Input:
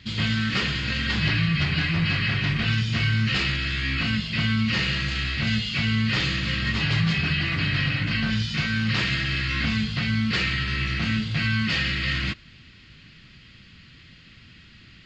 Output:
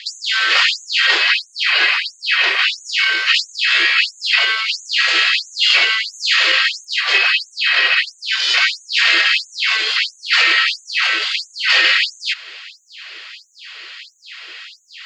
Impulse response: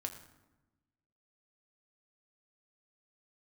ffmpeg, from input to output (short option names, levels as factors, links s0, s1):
-filter_complex "[0:a]asettb=1/sr,asplit=3[s0][s1][s2];[s0]atrim=end=5.704[s3];[s1]atrim=start=5.7:end=6.52,asetpts=PTS-STARTPTS,afade=t=in:d=0.004:c=qsin,afade=t=out:st=0.816:d=0.004:c=qsin,acontrast=29[s4];[s2]atrim=start=6.516[s5];[s3][s4]acrossfade=d=0.004:c1=hsin:c2=qsin[s6];[s6][s5]acrossfade=d=0.004:c1=qsin:c2=hsin,alimiter=level_in=8.91:limit=0.891:release=50:level=0:latency=1,afftfilt=real='re*gte(b*sr/1024,330*pow(6200/330,0.5+0.5*sin(2*PI*1.5*pts/sr)))':imag='im*gte(b*sr/1024,330*pow(6200/330,0.5+0.5*sin(2*PI*1.5*pts/sr)))':win_size=1024:overlap=0.75,volume=0.891"